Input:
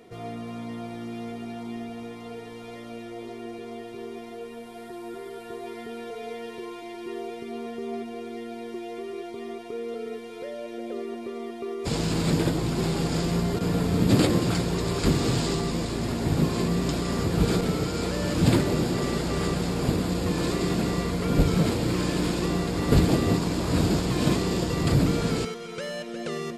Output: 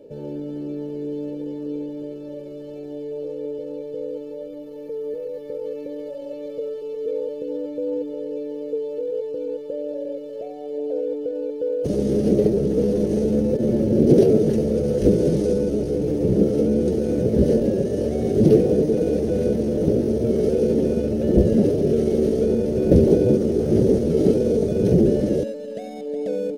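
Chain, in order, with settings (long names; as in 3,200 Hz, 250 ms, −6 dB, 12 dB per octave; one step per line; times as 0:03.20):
low shelf with overshoot 550 Hz +13.5 dB, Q 3
pitch shifter +4 semitones
level −10.5 dB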